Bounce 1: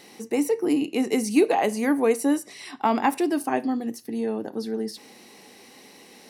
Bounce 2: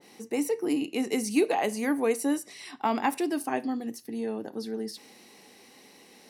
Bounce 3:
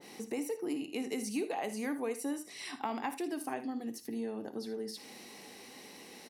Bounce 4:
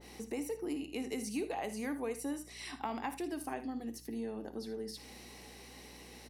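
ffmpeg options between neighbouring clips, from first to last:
-af "adynamicequalizer=threshold=0.0112:dfrequency=1700:dqfactor=0.7:tfrequency=1700:tqfactor=0.7:attack=5:release=100:ratio=0.375:range=1.5:mode=boostabove:tftype=highshelf,volume=0.562"
-filter_complex "[0:a]acompressor=threshold=0.00794:ratio=2.5,asplit=2[s0][s1];[s1]aecho=0:1:56|79:0.188|0.178[s2];[s0][s2]amix=inputs=2:normalize=0,volume=1.33"
-af "aeval=exprs='val(0)+0.00158*(sin(2*PI*60*n/s)+sin(2*PI*2*60*n/s)/2+sin(2*PI*3*60*n/s)/3+sin(2*PI*4*60*n/s)/4+sin(2*PI*5*60*n/s)/5)':c=same,volume=0.794"

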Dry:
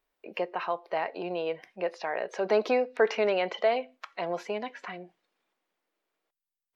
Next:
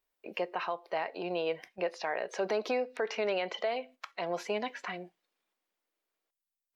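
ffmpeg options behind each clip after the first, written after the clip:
-af "agate=range=0.447:threshold=0.00447:ratio=16:detection=peak,highshelf=f=3700:g=7.5,alimiter=limit=0.0841:level=0:latency=1:release=419"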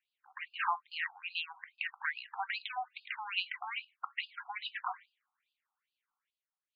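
-filter_complex "[0:a]asplit=2[s0][s1];[s1]aeval=exprs='val(0)*gte(abs(val(0)),0.00631)':c=same,volume=0.251[s2];[s0][s2]amix=inputs=2:normalize=0,afftfilt=real='re*between(b*sr/1024,980*pow(3600/980,0.5+0.5*sin(2*PI*2.4*pts/sr))/1.41,980*pow(3600/980,0.5+0.5*sin(2*PI*2.4*pts/sr))*1.41)':imag='im*between(b*sr/1024,980*pow(3600/980,0.5+0.5*sin(2*PI*2.4*pts/sr))/1.41,980*pow(3600/980,0.5+0.5*sin(2*PI*2.4*pts/sr))*1.41)':win_size=1024:overlap=0.75,volume=1.78"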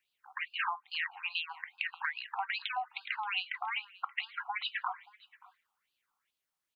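-af "acompressor=threshold=0.0126:ratio=5,aecho=1:1:578:0.0708,volume=2.11"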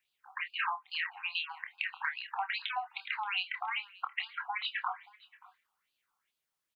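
-filter_complex "[0:a]asplit=2[s0][s1];[s1]adelay=27,volume=0.355[s2];[s0][s2]amix=inputs=2:normalize=0"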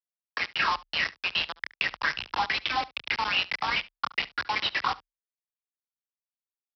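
-af "aresample=11025,acrusher=bits=5:mix=0:aa=0.000001,aresample=44100,afreqshift=33,aecho=1:1:71:0.0891,volume=2.24"

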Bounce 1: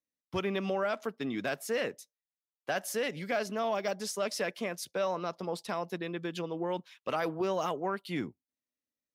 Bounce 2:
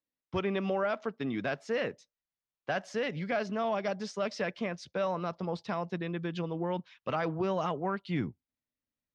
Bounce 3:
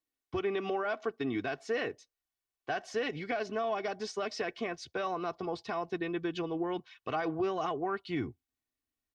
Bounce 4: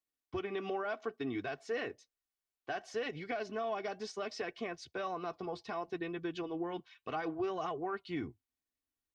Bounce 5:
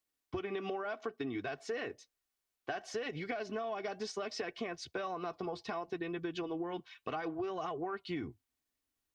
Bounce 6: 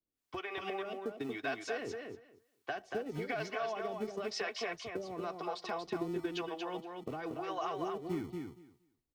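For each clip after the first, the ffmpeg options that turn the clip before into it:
-af "asubboost=boost=3:cutoff=180,lowpass=f=6300:w=0.5412,lowpass=f=6300:w=1.3066,highshelf=f=4600:g=-11.5,volume=1.19"
-af "aecho=1:1:2.7:0.68,alimiter=limit=0.0631:level=0:latency=1:release=99"
-af "flanger=delay=1.5:depth=3.7:regen=-75:speed=0.65:shape=triangular"
-af "acompressor=threshold=0.01:ratio=6,volume=1.78"
-filter_complex "[0:a]acrossover=split=490[s0][s1];[s0]aeval=exprs='val(0)*(1-1/2+1/2*cos(2*PI*1*n/s))':c=same[s2];[s1]aeval=exprs='val(0)*(1-1/2-1/2*cos(2*PI*1*n/s))':c=same[s3];[s2][s3]amix=inputs=2:normalize=0,acrossover=split=200[s4][s5];[s4]acrusher=samples=41:mix=1:aa=0.000001[s6];[s6][s5]amix=inputs=2:normalize=0,aecho=1:1:234|468|702:0.596|0.0893|0.0134,volume=1.78"

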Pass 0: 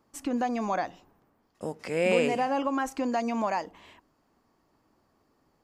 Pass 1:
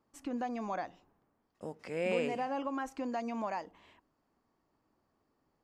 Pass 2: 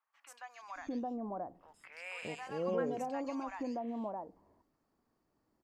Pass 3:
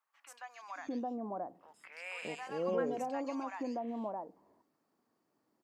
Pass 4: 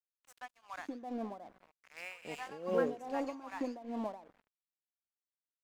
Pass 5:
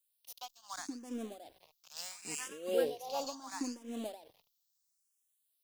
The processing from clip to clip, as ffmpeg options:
-af "highshelf=f=6000:g=-7,volume=0.398"
-filter_complex "[0:a]acrossover=split=960|2900[s0][s1][s2];[s2]adelay=130[s3];[s0]adelay=620[s4];[s4][s1][s3]amix=inputs=3:normalize=0,volume=0.891"
-af "highpass=180,volume=1.12"
-af "aecho=1:1:205|410|615:0.1|0.04|0.016,aeval=exprs='sgn(val(0))*max(abs(val(0))-0.002,0)':c=same,tremolo=f=2.5:d=0.82,volume=1.5"
-filter_complex "[0:a]aexciter=amount=6.2:drive=4.8:freq=3000,asplit=2[s0][s1];[s1]afreqshift=0.74[s2];[s0][s2]amix=inputs=2:normalize=1,volume=1.12"

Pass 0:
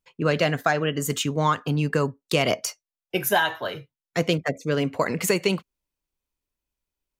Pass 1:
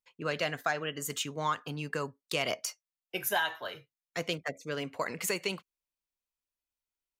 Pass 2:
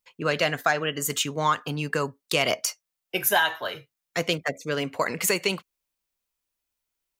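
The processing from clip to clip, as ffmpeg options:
-af "lowshelf=f=490:g=-10,volume=0.473"
-af "highshelf=f=12000:g=3.5,volume=2.51"

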